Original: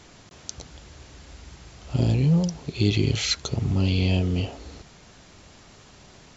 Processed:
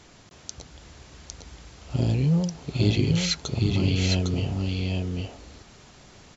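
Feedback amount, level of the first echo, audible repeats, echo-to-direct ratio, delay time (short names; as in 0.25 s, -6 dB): no steady repeat, -3.5 dB, 1, -3.5 dB, 0.806 s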